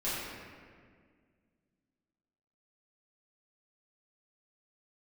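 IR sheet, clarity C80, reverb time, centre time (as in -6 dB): -0.5 dB, 1.9 s, 0.127 s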